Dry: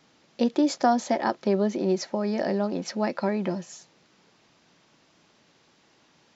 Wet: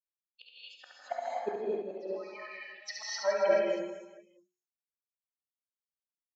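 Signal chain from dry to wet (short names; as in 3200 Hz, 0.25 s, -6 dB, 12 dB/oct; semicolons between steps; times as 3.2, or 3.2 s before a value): per-bin expansion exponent 3; LPF 4200 Hz 12 dB/oct; low shelf 420 Hz -8 dB; notches 60/120/180/240/300/360 Hz; flipped gate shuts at -26 dBFS, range -32 dB; LFO high-pass sine 0.48 Hz 360–2800 Hz; on a send: reverse bouncing-ball echo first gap 70 ms, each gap 1.3×, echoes 5; on the sum: non-linear reverb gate 0.28 s rising, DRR -5 dB; three-band expander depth 40%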